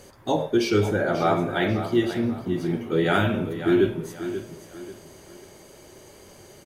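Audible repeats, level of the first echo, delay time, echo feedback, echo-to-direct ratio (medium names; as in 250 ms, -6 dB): 3, -11.0 dB, 538 ms, 34%, -10.5 dB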